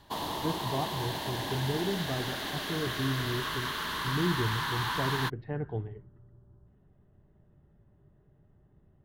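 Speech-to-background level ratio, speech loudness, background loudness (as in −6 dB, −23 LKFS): −2.0 dB, −35.5 LKFS, −33.5 LKFS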